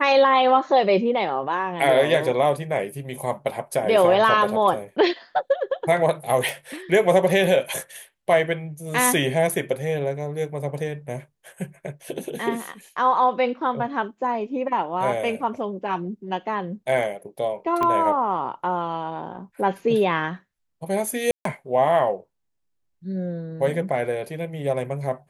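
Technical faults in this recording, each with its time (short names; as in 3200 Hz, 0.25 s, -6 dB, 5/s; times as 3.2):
6.49 pop
17.83 pop -12 dBFS
21.31–21.45 gap 0.143 s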